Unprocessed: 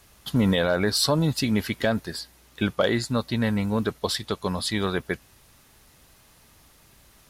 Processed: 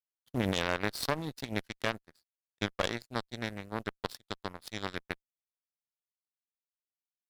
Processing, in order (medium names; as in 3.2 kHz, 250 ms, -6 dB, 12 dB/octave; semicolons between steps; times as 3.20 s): power-law waveshaper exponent 3; one-sided clip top -31.5 dBFS, bottom -15 dBFS; trim +2 dB